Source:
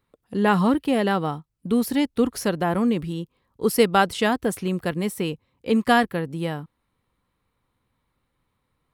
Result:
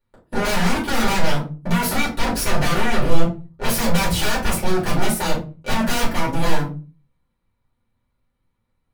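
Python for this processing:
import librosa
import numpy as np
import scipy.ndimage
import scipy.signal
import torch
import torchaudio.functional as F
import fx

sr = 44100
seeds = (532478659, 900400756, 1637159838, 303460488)

y = fx.low_shelf(x, sr, hz=120.0, db=9.5, at=(1.85, 4.57))
y = fx.leveller(y, sr, passes=3)
y = 10.0 ** (-18.5 / 20.0) * (np.abs((y / 10.0 ** (-18.5 / 20.0) + 3.0) % 4.0 - 2.0) - 1.0)
y = fx.room_shoebox(y, sr, seeds[0], volume_m3=140.0, walls='furnished', distance_m=4.5)
y = F.gain(torch.from_numpy(y), -7.5).numpy()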